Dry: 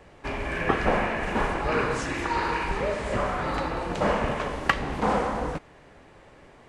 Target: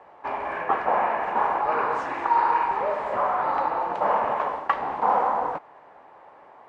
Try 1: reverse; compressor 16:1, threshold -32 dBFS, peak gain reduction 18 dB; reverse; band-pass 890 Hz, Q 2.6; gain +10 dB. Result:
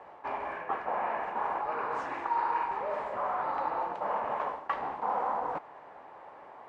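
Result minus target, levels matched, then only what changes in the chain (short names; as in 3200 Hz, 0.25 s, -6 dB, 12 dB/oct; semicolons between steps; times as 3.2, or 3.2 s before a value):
compressor: peak gain reduction +10.5 dB
change: compressor 16:1, threshold -21 dBFS, peak gain reduction 8 dB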